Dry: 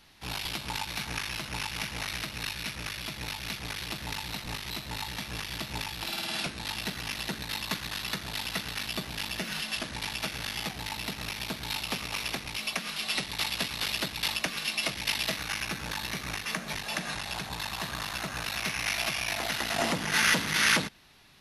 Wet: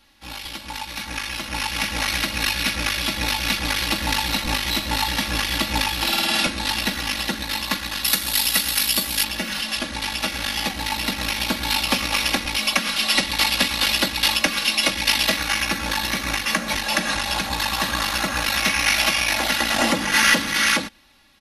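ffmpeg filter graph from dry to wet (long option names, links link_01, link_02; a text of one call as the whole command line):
ffmpeg -i in.wav -filter_complex "[0:a]asettb=1/sr,asplit=3[link_01][link_02][link_03];[link_01]atrim=end=8.044[link_04];[link_02]atrim=start=8.04:end=9.24,asetpts=PTS-STARTPTS,afade=type=in:duration=0.004:curve=qsin,afade=type=out:start_time=1.196:duration=0.004:curve=qsin,aemphasis=mode=production:type=75fm,bandreject=frequency=6100:width=29[link_05];[link_03]atrim=start=9.236[link_06];[link_04][link_05]acrossfade=duration=0.004:curve1=hsin:curve2=qsin[link_07];[link_07][link_06]acrossfade=duration=0.004:curve1=qsin:curve2=hsin,aecho=1:1:3.6:0.72,dynaudnorm=framelen=670:gausssize=5:maxgain=13.5dB,volume=-1dB" out.wav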